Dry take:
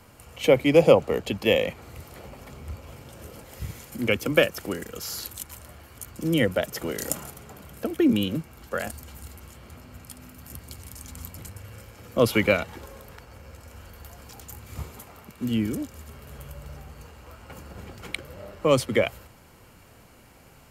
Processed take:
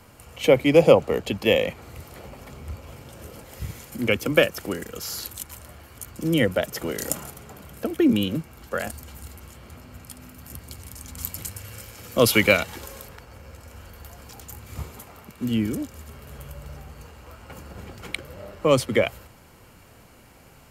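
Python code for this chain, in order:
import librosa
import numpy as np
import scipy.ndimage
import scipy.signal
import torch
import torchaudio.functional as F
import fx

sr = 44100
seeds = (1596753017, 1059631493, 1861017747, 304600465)

y = fx.high_shelf(x, sr, hz=2600.0, db=10.0, at=(11.18, 13.08))
y = y * 10.0 ** (1.5 / 20.0)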